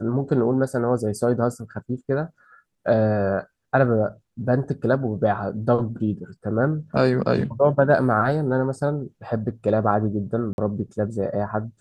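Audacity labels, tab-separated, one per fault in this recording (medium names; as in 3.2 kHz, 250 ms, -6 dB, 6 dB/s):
10.530000	10.580000	dropout 51 ms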